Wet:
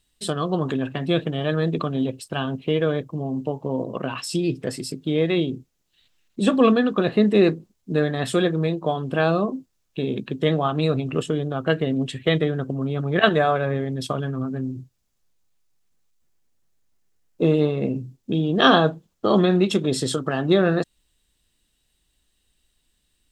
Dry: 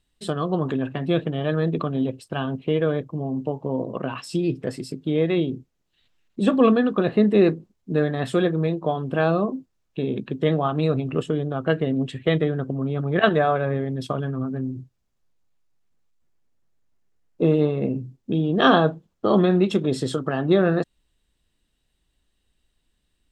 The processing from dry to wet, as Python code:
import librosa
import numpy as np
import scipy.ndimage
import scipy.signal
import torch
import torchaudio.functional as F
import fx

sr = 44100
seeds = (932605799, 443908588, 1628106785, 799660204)

y = fx.high_shelf(x, sr, hz=3300.0, db=10.0)